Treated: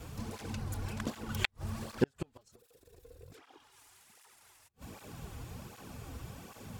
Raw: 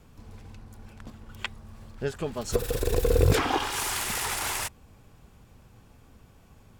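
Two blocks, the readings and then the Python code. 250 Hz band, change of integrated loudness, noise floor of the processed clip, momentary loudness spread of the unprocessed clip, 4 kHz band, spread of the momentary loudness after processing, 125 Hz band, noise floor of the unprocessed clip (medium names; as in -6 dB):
-4.0 dB, -12.0 dB, -70 dBFS, 24 LU, -11.0 dB, 25 LU, -9.5 dB, -56 dBFS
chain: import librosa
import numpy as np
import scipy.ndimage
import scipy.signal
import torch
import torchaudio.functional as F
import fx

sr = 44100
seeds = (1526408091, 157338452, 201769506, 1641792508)

y = fx.bass_treble(x, sr, bass_db=-1, treble_db=3)
y = fx.gate_flip(y, sr, shuts_db=-24.0, range_db=-42)
y = fx.flanger_cancel(y, sr, hz=1.3, depth_ms=5.6)
y = y * 10.0 ** (12.0 / 20.0)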